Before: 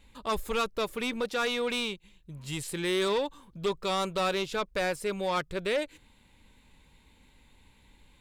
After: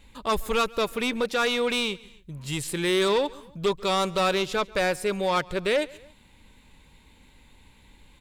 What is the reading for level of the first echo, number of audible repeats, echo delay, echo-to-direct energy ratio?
-23.5 dB, 2, 0.14 s, -22.5 dB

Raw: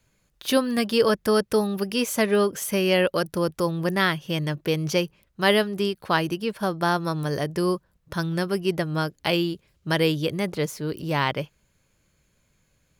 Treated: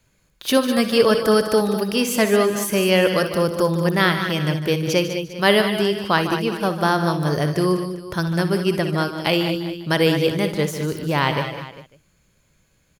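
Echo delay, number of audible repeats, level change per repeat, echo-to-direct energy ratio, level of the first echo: 60 ms, 6, no steady repeat, -5.5 dB, -13.0 dB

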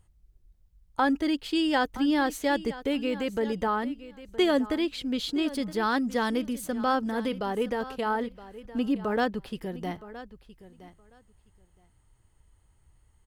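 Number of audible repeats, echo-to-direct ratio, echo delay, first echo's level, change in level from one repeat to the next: 2, -16.0 dB, 0.968 s, -16.0 dB, -16.5 dB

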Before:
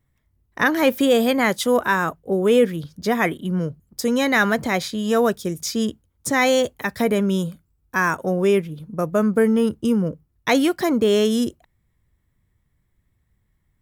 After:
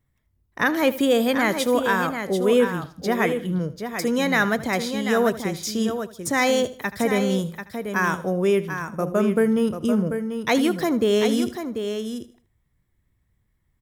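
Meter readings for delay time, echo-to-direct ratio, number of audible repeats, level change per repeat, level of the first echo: 78 ms, -7.5 dB, 5, no steady repeat, -16.5 dB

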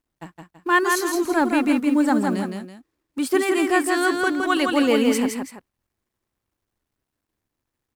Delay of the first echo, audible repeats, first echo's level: 0.165 s, 2, -4.0 dB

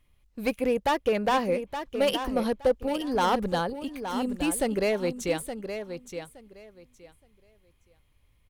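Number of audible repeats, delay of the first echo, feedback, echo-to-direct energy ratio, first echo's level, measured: 2, 0.869 s, 19%, -9.0 dB, -9.0 dB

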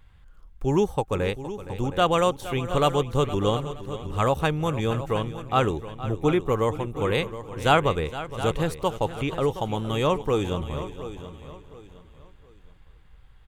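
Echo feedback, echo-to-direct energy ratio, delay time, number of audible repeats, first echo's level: no steady repeat, -10.0 dB, 0.466 s, 7, -14.5 dB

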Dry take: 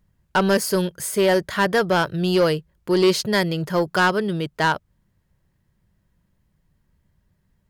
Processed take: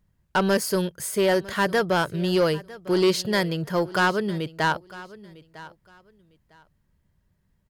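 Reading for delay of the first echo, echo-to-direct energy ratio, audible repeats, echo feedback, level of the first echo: 0.953 s, -19.0 dB, 2, 21%, -19.0 dB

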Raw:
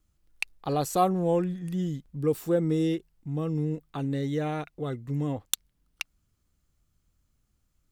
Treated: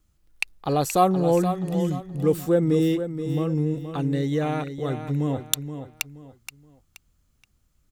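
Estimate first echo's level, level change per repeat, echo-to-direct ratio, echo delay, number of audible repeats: -9.5 dB, -10.0 dB, -9.0 dB, 0.475 s, 3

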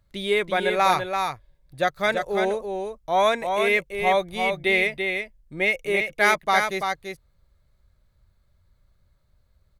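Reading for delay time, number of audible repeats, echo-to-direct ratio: 0.337 s, 1, -5.5 dB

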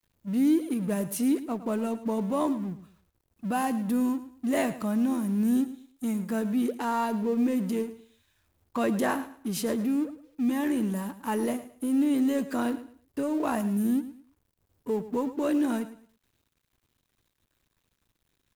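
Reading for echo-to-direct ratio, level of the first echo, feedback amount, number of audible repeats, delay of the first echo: -14.0 dB, -14.5 dB, 26%, 2, 0.109 s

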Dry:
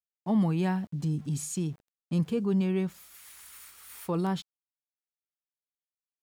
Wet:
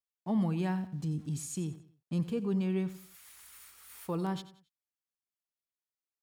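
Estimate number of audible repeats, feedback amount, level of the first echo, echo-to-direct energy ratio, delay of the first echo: 3, 35%, -15.0 dB, -14.5 dB, 91 ms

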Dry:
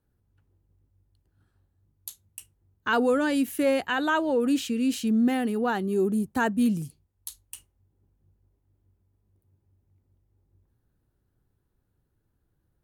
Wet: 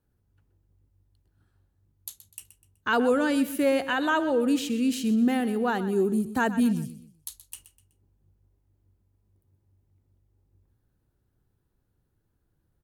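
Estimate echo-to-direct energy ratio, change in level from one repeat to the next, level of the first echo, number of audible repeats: -13.5 dB, -9.0 dB, -14.0 dB, 3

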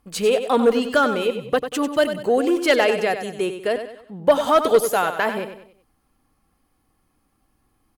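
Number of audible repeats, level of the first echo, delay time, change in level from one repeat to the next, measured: 4, -9.5 dB, 95 ms, -8.0 dB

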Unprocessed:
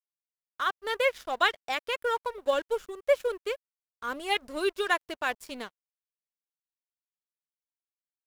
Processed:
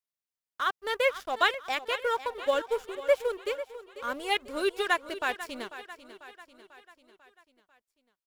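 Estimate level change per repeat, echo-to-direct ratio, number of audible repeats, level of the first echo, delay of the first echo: -5.5 dB, -12.5 dB, 4, -14.0 dB, 0.494 s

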